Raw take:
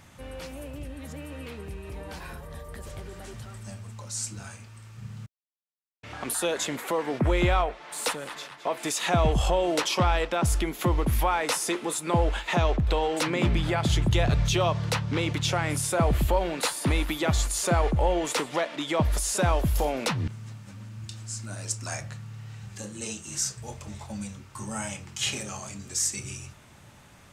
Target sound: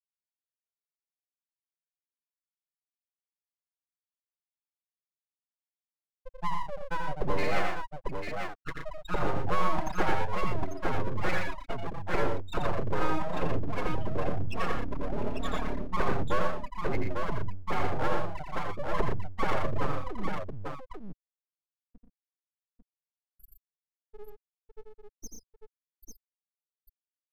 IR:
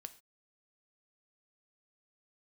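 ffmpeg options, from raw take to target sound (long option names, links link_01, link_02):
-filter_complex "[0:a]lowpass=6900,agate=range=-33dB:threshold=-33dB:ratio=3:detection=peak,afftfilt=real='re*gte(hypot(re,im),0.2)':imag='im*gte(hypot(re,im),0.2)':win_size=1024:overlap=0.75,lowshelf=frequency=120:gain=8.5,aecho=1:1:3.8:0.68,acrossover=split=230[link_01][link_02];[link_01]acompressor=threshold=-27dB:ratio=12[link_03];[link_03][link_02]amix=inputs=2:normalize=0,aphaser=in_gain=1:out_gain=1:delay=1.4:decay=0.24:speed=0.31:type=sinusoidal,aeval=exprs='abs(val(0))':channel_layout=same,aecho=1:1:85|120|846:0.596|0.473|0.562,volume=-4.5dB"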